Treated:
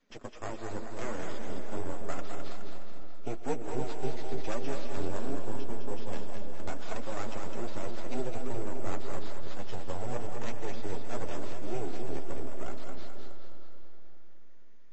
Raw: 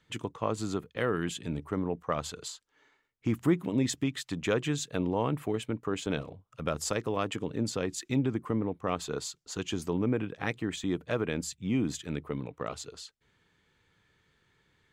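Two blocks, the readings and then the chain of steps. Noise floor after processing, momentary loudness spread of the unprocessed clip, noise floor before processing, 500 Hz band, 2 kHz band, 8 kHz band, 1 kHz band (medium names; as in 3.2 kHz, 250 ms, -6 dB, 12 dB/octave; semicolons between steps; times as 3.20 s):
-38 dBFS, 9 LU, -73 dBFS, -4.5 dB, -6.5 dB, -11.0 dB, -3.0 dB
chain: time-frequency box 5.17–6.08 s, 430–2000 Hz -9 dB; treble shelf 2.2 kHz -7 dB; in parallel at -2 dB: compression 6:1, threshold -45 dBFS, peak gain reduction 23 dB; on the sum: frequency shift +120 Hz; sample-rate reducer 8.4 kHz, jitter 0%; half-wave rectifier; flange 0.86 Hz, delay 3.7 ms, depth 9.3 ms, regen -4%; on a send: two-band feedback delay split 530 Hz, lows 287 ms, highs 209 ms, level -5 dB; on the sum: algorithmic reverb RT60 3.7 s, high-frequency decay 0.8×, pre-delay 80 ms, DRR 8.5 dB; trim -1.5 dB; MP3 32 kbps 32 kHz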